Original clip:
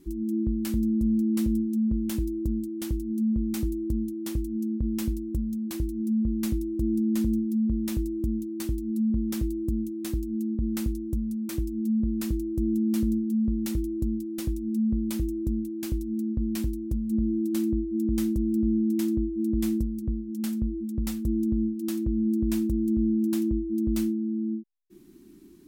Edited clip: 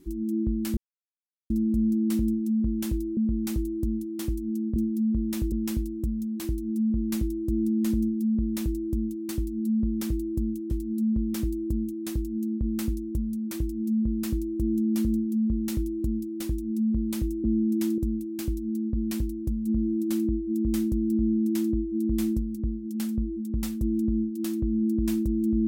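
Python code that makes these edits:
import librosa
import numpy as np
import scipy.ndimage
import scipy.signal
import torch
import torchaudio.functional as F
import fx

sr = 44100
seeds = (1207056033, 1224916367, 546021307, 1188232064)

y = fx.edit(x, sr, fx.insert_silence(at_s=0.77, length_s=0.73),
    fx.cut(start_s=2.44, length_s=0.8),
    fx.duplicate(start_s=7.31, length_s=0.76, to_s=4.83),
    fx.repeat(start_s=8.68, length_s=1.33, count=2),
    fx.duplicate(start_s=18.62, length_s=0.54, to_s=15.42), tone=tone)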